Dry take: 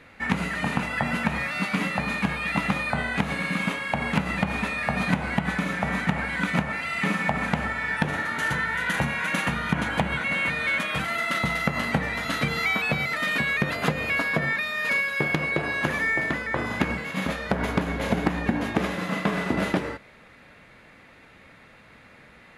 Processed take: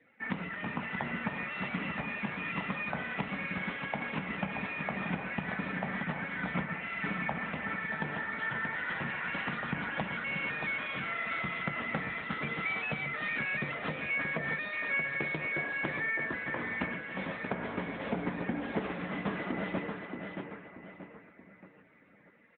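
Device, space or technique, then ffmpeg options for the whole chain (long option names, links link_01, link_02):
mobile call with aggressive noise cancelling: -af "highpass=frequency=140:poles=1,highshelf=frequency=6300:gain=-2.5,aecho=1:1:629|1258|1887|2516|3145:0.501|0.21|0.0884|0.0371|0.0156,afftdn=noise_reduction=32:noise_floor=-48,volume=-8dB" -ar 8000 -c:a libopencore_amrnb -b:a 10200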